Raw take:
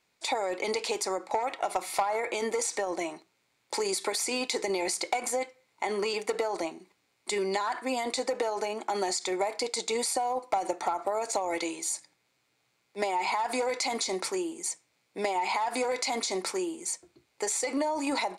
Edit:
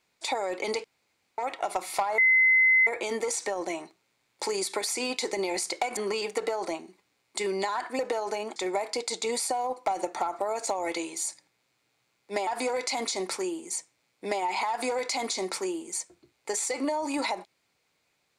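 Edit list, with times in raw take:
0.84–1.38 s: room tone
2.18 s: add tone 2.05 kHz -17 dBFS 0.69 s
5.28–5.89 s: delete
7.91–8.29 s: delete
8.86–9.22 s: delete
13.13–13.40 s: delete

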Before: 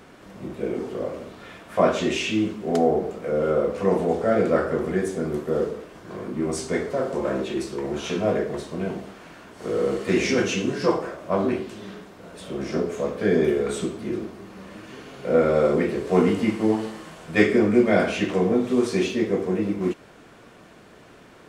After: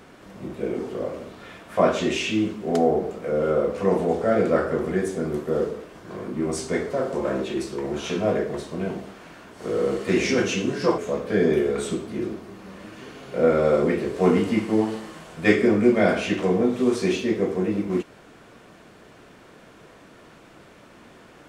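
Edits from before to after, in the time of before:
10.98–12.89 s: delete

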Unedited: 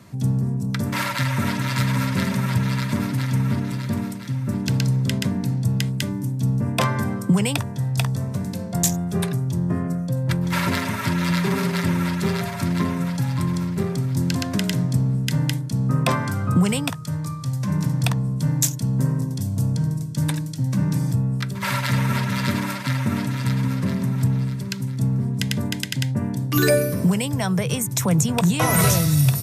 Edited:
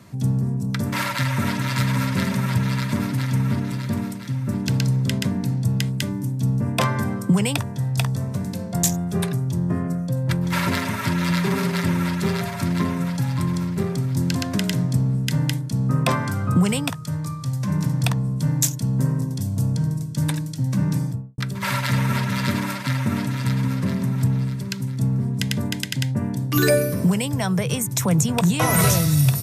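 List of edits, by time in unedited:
20.91–21.38 s: studio fade out

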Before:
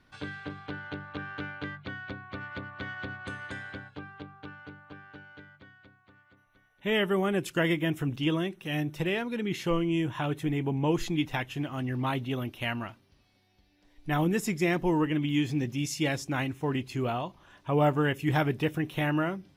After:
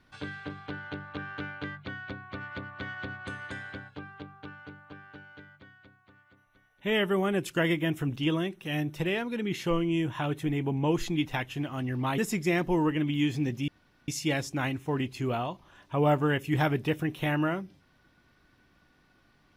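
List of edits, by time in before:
12.18–14.33 s: delete
15.83 s: insert room tone 0.40 s

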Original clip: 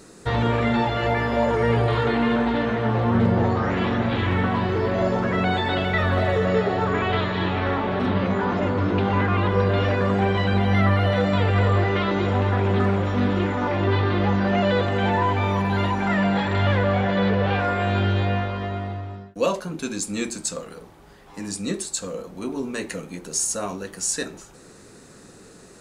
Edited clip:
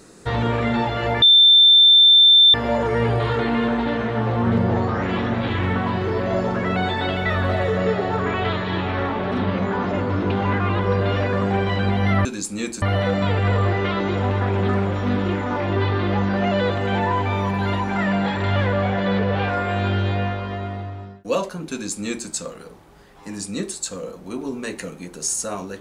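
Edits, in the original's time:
1.22 s: add tone 3.56 kHz -8 dBFS 1.32 s
19.83–20.40 s: copy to 10.93 s

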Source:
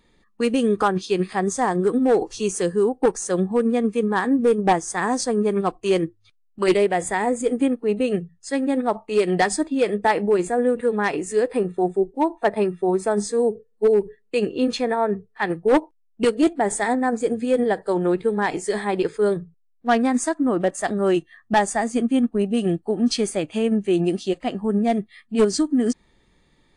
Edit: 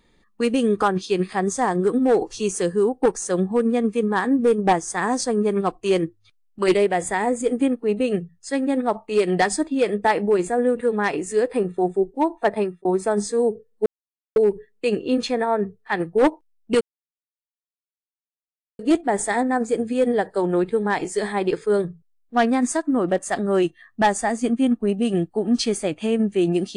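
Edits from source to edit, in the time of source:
12.57–12.85 s: fade out
13.86 s: insert silence 0.50 s
16.31 s: insert silence 1.98 s

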